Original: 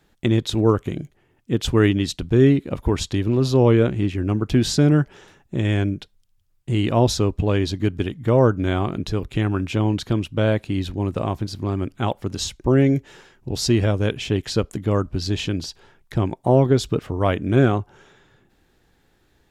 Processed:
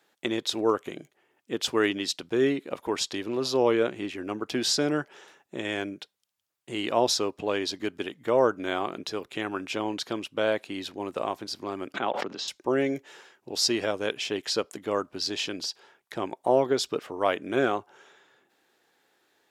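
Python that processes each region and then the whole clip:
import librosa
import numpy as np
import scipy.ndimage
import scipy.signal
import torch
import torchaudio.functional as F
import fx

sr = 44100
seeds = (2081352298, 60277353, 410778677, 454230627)

y = fx.chain(x, sr, fx.highpass(hz=120.0, slope=24),
    fx.air_absorb(metres=190.0),
    fx.pre_swell(db_per_s=31.0), at=(11.94, 12.48))
y = scipy.signal.sosfilt(scipy.signal.butter(2, 440.0, 'highpass', fs=sr, output='sos'), y)
y = fx.dynamic_eq(y, sr, hz=5100.0, q=3.7, threshold_db=-47.0, ratio=4.0, max_db=5)
y = y * librosa.db_to_amplitude(-2.0)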